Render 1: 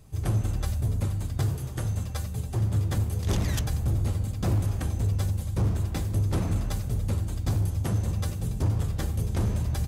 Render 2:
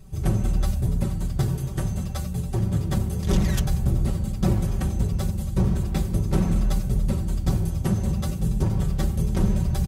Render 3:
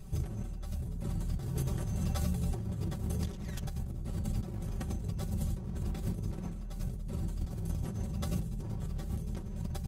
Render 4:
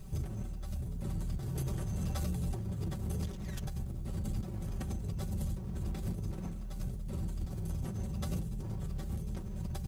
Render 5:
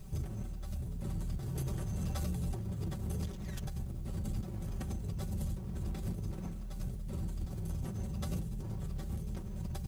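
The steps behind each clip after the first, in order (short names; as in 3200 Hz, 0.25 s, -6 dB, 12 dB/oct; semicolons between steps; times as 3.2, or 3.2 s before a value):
low shelf 320 Hz +7 dB; comb 5.3 ms, depth 72%
negative-ratio compressor -29 dBFS, ratio -1; gain -6.5 dB
requantised 12-bit, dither triangular; soft clip -27.5 dBFS, distortion -17 dB
bit-crush 11-bit; gain -1 dB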